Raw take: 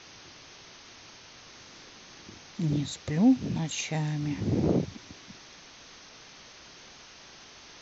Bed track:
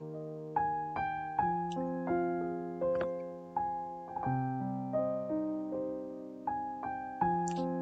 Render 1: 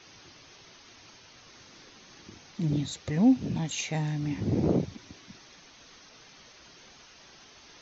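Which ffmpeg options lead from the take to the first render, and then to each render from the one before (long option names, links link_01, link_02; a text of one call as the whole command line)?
ffmpeg -i in.wav -af "afftdn=noise_reduction=6:noise_floor=-51" out.wav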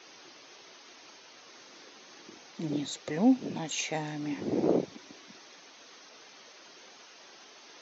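ffmpeg -i in.wav -af "highpass=310,equalizer=frequency=440:width_type=o:width=2.4:gain=3.5" out.wav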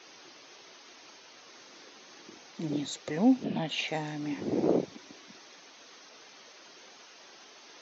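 ffmpeg -i in.wav -filter_complex "[0:a]asettb=1/sr,asplit=3[link_01][link_02][link_03];[link_01]atrim=end=3.444[link_04];[link_02]atrim=start=3.44:end=3.88,asetpts=PTS-STARTPTS,afade=type=in:duration=0.004:curve=qsin,afade=type=out:start_time=0.436:duration=0.004:curve=qsin,highpass=110,equalizer=frequency=150:width_type=q:width=4:gain=5,equalizer=frequency=220:width_type=q:width=4:gain=8,equalizer=frequency=670:width_type=q:width=4:gain=7,equalizer=frequency=1800:width_type=q:width=4:gain=3,equalizer=frequency=3000:width_type=q:width=4:gain=6,lowpass=frequency=4600:width=0.5412,lowpass=frequency=4600:width=1.3066[link_05];[link_03]atrim=start=3.876[link_06];[link_04][link_05]acrossfade=duration=0.004:curve1=hsin:curve2=qsin[link_07];[link_07][link_06]acrossfade=duration=0.004:curve1=qsin:curve2=hsin" out.wav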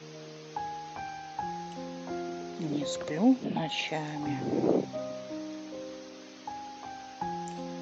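ffmpeg -i in.wav -i bed.wav -filter_complex "[1:a]volume=-4.5dB[link_01];[0:a][link_01]amix=inputs=2:normalize=0" out.wav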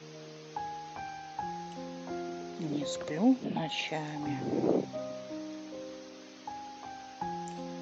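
ffmpeg -i in.wav -af "volume=-2dB" out.wav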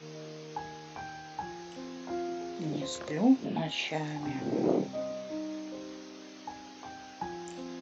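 ffmpeg -i in.wav -filter_complex "[0:a]asplit=2[link_01][link_02];[link_02]adelay=26,volume=-5dB[link_03];[link_01][link_03]amix=inputs=2:normalize=0" out.wav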